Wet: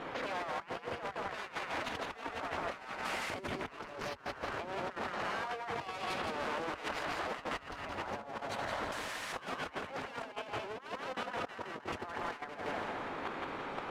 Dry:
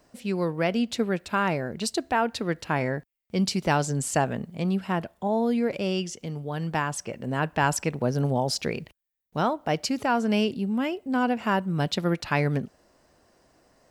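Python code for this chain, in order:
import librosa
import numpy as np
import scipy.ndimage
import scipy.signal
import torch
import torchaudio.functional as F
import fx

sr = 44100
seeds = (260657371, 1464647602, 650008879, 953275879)

y = x + 0.5 * 10.0 ** (-15.0 / 20.0) * np.diff(np.sign(x), prepend=np.sign(x[:1]))
y = fx.spec_gate(y, sr, threshold_db=-15, keep='weak')
y = fx.level_steps(y, sr, step_db=10)
y = scipy.signal.sosfilt(scipy.signal.butter(2, 1200.0, 'lowpass', fs=sr, output='sos'), y)
y = fx.hum_notches(y, sr, base_hz=60, count=8)
y = fx.echo_feedback(y, sr, ms=168, feedback_pct=46, wet_db=-5.0)
y = fx.over_compress(y, sr, threshold_db=-51.0, ratio=-0.5)
y = fx.peak_eq(y, sr, hz=62.0, db=-13.0, octaves=0.31)
y = y * librosa.db_to_amplitude(11.5)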